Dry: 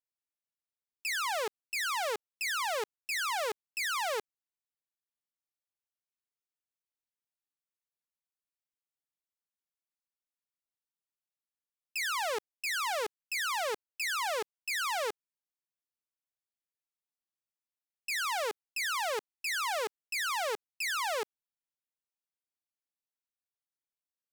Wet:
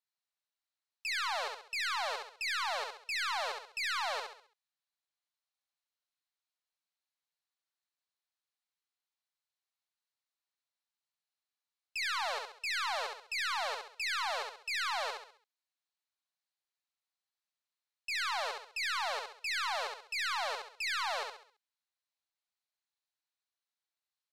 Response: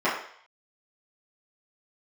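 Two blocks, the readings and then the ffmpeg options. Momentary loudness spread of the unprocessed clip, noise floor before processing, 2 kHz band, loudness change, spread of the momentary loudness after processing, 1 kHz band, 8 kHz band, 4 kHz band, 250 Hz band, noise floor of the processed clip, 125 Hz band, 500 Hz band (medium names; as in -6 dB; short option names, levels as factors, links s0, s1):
5 LU, under -85 dBFS, -1.5 dB, -2.0 dB, 5 LU, -1.5 dB, -7.0 dB, 0.0 dB, under -15 dB, under -85 dBFS, no reading, -6.5 dB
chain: -filter_complex "[0:a]highpass=f=650:w=0.5412,highpass=f=650:w=1.3066,equalizer=f=4100:w=5.3:g=7.5,asplit=2[s0][s1];[s1]alimiter=level_in=2.24:limit=0.0631:level=0:latency=1,volume=0.447,volume=1.19[s2];[s0][s2]amix=inputs=2:normalize=0,asoftclip=type=tanh:threshold=0.0944,adynamicsmooth=sensitivity=1:basefreq=8000,asplit=2[s3][s4];[s4]aecho=0:1:67|134|201|268|335:0.631|0.246|0.096|0.0374|0.0146[s5];[s3][s5]amix=inputs=2:normalize=0,volume=0.562"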